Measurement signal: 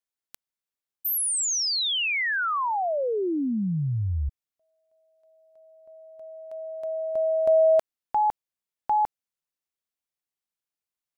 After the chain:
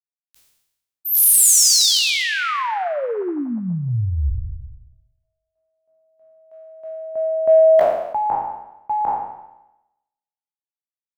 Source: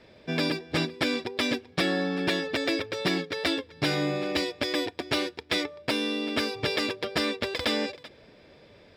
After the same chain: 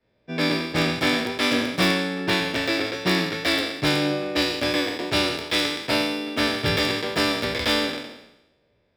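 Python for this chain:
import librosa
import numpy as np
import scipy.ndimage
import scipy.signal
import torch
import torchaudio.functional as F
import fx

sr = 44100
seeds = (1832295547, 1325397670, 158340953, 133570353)

p1 = fx.spec_trails(x, sr, decay_s=1.48)
p2 = (np.mod(10.0 ** (12.5 / 20.0) * p1 + 1.0, 2.0) - 1.0) / 10.0 ** (12.5 / 20.0)
p3 = p1 + F.gain(torch.from_numpy(p2), -9.0).numpy()
p4 = fx.doubler(p3, sr, ms=17.0, db=-13.0)
p5 = p4 + 10.0 ** (-16.0 / 20.0) * np.pad(p4, (int(116 * sr / 1000.0), 0))[:len(p4)]
p6 = fx.band_widen(p5, sr, depth_pct=70)
y = F.gain(torch.from_numpy(p6), -1.0).numpy()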